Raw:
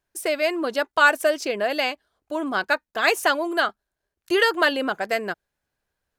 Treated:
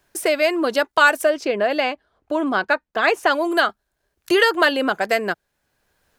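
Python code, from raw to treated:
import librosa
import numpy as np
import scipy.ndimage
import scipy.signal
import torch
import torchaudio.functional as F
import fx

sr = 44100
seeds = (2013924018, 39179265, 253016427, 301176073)

y = fx.lowpass(x, sr, hz=1900.0, slope=6, at=(1.24, 3.3), fade=0.02)
y = fx.band_squash(y, sr, depth_pct=40)
y = y * 10.0 ** (4.0 / 20.0)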